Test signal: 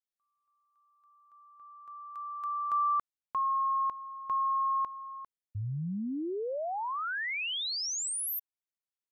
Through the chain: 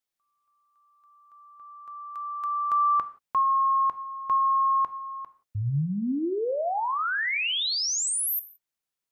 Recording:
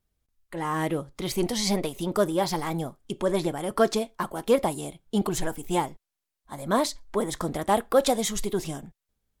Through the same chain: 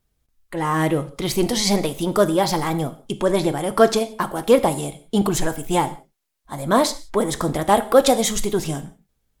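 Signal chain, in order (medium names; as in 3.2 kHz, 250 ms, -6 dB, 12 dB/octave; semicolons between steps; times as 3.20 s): gated-style reverb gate 200 ms falling, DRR 11 dB; trim +6.5 dB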